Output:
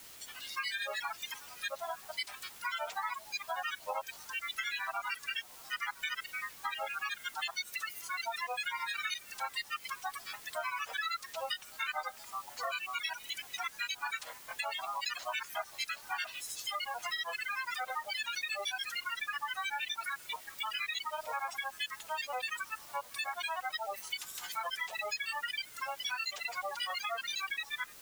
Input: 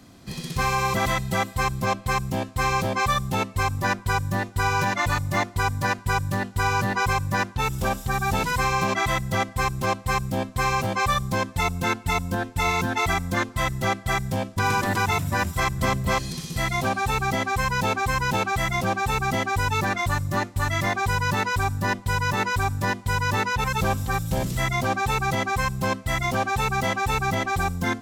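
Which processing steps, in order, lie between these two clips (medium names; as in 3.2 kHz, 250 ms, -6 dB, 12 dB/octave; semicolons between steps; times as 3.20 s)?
in parallel at -12 dB: saturation -23 dBFS, distortion -11 dB; on the sum: steep high-pass 1.1 kHz 36 dB/octave; granulator 121 ms, grains 13 per s, pitch spread up and down by 12 st; spectral gate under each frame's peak -15 dB strong; treble shelf 3.8 kHz +4.5 dB; word length cut 8-bit, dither triangular; compression 3:1, threshold -30 dBFS, peak gain reduction 7 dB; trim -4.5 dB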